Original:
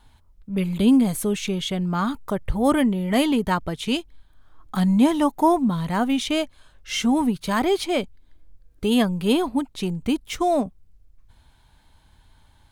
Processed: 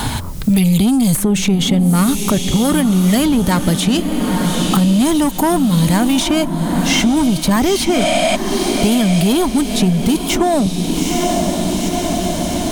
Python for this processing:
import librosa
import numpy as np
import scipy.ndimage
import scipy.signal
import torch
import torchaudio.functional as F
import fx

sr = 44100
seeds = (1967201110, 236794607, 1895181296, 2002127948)

p1 = fx.spec_repair(x, sr, seeds[0], start_s=7.98, length_s=0.35, low_hz=530.0, high_hz=11000.0, source='before')
p2 = fx.bass_treble(p1, sr, bass_db=9, treble_db=10)
p3 = fx.over_compress(p2, sr, threshold_db=-20.0, ratio=-1.0)
p4 = p2 + F.gain(torch.from_numpy(p3), 2.0).numpy()
p5 = 10.0 ** (-9.0 / 20.0) * np.tanh(p4 / 10.0 ** (-9.0 / 20.0))
p6 = p5 + fx.echo_diffused(p5, sr, ms=884, feedback_pct=43, wet_db=-9.5, dry=0)
y = fx.band_squash(p6, sr, depth_pct=100)